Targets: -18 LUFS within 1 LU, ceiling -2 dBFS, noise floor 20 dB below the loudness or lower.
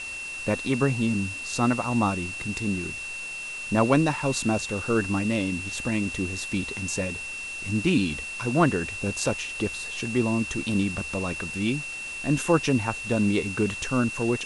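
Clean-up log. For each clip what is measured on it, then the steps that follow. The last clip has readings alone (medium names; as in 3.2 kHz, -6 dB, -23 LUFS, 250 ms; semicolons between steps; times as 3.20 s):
steady tone 2.7 kHz; tone level -33 dBFS; noise floor -35 dBFS; noise floor target -47 dBFS; loudness -26.5 LUFS; peak level -6.0 dBFS; loudness target -18.0 LUFS
-> band-stop 2.7 kHz, Q 30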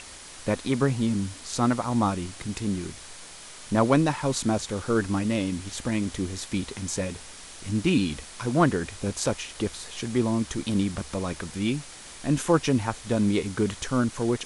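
steady tone not found; noise floor -44 dBFS; noise floor target -47 dBFS
-> noise reduction 6 dB, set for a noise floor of -44 dBFS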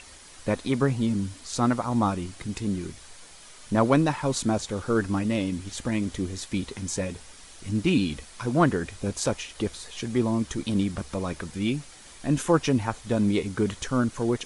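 noise floor -48 dBFS; loudness -27.0 LUFS; peak level -6.5 dBFS; loudness target -18.0 LUFS
-> trim +9 dB; peak limiter -2 dBFS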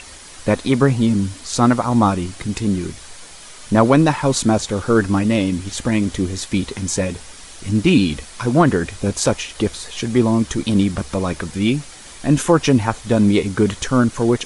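loudness -18.5 LUFS; peak level -2.0 dBFS; noise floor -39 dBFS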